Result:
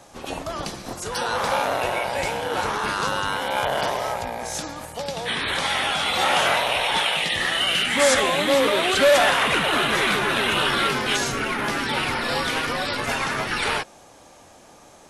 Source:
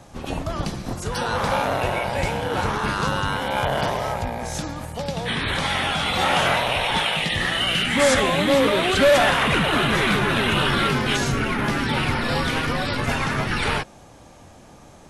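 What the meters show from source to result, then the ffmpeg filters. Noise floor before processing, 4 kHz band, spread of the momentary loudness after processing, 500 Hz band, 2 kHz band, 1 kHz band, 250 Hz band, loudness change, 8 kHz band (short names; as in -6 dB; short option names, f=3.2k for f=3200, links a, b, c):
-47 dBFS, +1.0 dB, 12 LU, -0.5 dB, 0.0 dB, 0.0 dB, -5.5 dB, -0.5 dB, +3.0 dB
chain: -af "bass=f=250:g=-11,treble=f=4k:g=3"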